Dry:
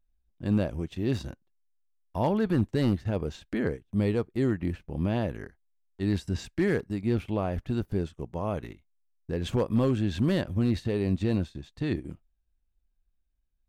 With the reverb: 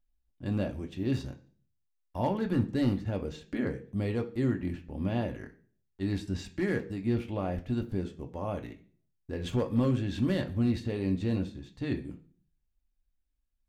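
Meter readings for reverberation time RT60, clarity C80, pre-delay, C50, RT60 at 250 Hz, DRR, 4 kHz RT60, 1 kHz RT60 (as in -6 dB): 0.45 s, 19.5 dB, 3 ms, 15.0 dB, 0.65 s, 3.5 dB, 0.50 s, 0.40 s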